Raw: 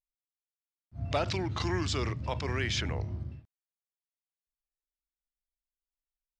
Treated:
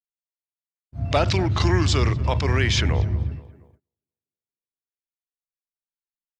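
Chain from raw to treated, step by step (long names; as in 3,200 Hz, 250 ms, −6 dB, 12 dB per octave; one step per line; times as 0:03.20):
0:01.16–0:03.37: low-shelf EQ 72 Hz +11 dB
tape delay 237 ms, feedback 57%, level −16 dB, low-pass 1,400 Hz
noise gate −60 dBFS, range −30 dB
level +9 dB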